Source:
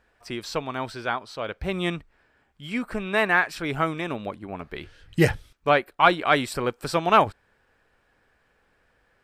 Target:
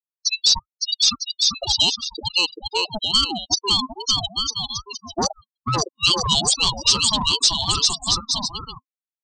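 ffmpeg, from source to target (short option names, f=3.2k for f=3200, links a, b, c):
-af "aexciter=amount=9.1:drive=6.3:freq=3.2k,afftfilt=real='re*gte(hypot(re,im),0.398)':imag='im*gte(hypot(re,im),0.398)':win_size=1024:overlap=0.75,aecho=1:1:560|952|1226|1418|1553:0.631|0.398|0.251|0.158|0.1,afftfilt=real='re*(1-between(b*sr/4096,660,3300))':imag='im*(1-between(b*sr/4096,660,3300))':win_size=4096:overlap=0.75,afftdn=nr=36:nf=-40,acompressor=threshold=-23dB:ratio=3,aresample=16000,asoftclip=type=tanh:threshold=-23.5dB,aresample=44100,firequalizer=gain_entry='entry(1300,0);entry(2100,-26);entry(3000,6);entry(5500,9)':delay=0.05:min_phase=1,aeval=exprs='val(0)*sin(2*PI*550*n/s+550*0.3/2.4*sin(2*PI*2.4*n/s))':c=same,volume=9dB"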